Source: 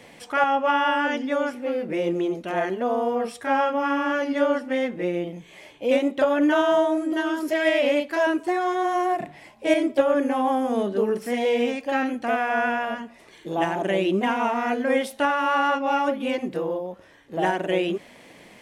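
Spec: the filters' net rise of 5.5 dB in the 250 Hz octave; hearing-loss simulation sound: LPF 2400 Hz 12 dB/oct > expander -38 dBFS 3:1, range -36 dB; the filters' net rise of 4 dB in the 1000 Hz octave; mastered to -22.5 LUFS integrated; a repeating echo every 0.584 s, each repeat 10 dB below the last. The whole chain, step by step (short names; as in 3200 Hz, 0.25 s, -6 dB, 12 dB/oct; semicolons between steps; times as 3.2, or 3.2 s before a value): LPF 2400 Hz 12 dB/oct; bell 250 Hz +6.5 dB; bell 1000 Hz +5 dB; feedback echo 0.584 s, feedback 32%, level -10 dB; expander -38 dBFS 3:1, range -36 dB; gain -2.5 dB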